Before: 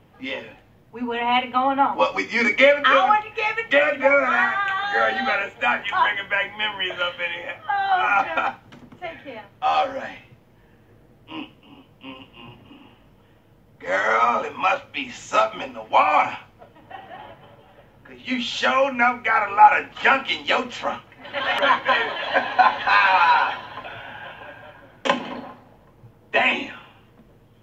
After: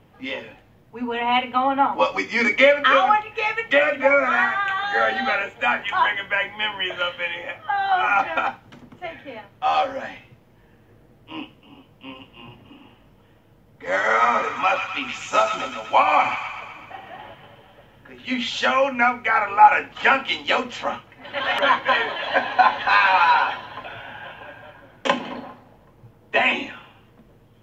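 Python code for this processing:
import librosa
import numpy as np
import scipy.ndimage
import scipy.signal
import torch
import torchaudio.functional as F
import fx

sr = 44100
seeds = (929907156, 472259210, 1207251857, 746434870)

y = fx.echo_wet_highpass(x, sr, ms=125, feedback_pct=62, hz=1500.0, wet_db=-4, at=(13.88, 18.48), fade=0.02)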